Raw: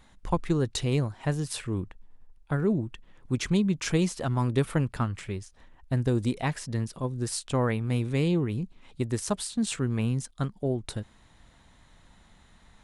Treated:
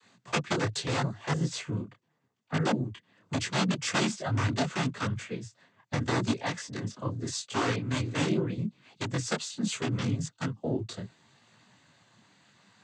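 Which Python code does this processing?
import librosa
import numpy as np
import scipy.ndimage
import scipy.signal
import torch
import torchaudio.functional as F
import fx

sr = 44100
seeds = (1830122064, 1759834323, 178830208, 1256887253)

y = (np.mod(10.0 ** (17.0 / 20.0) * x + 1.0, 2.0) - 1.0) / 10.0 ** (17.0 / 20.0)
y = fx.noise_vocoder(y, sr, seeds[0], bands=16)
y = fx.detune_double(y, sr, cents=27)
y = y * 10.0 ** (2.0 / 20.0)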